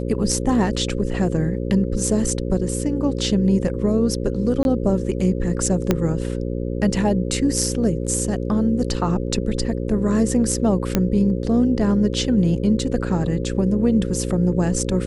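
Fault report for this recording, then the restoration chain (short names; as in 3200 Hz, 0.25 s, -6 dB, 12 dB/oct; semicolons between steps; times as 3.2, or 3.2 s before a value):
buzz 60 Hz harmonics 9 -25 dBFS
4.63–4.65 gap 21 ms
5.91 pop -4 dBFS
10.95 pop -4 dBFS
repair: de-click; de-hum 60 Hz, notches 9; interpolate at 4.63, 21 ms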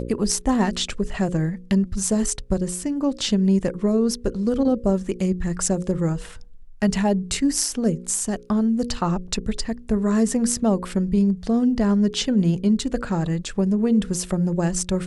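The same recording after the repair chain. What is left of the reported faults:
5.91 pop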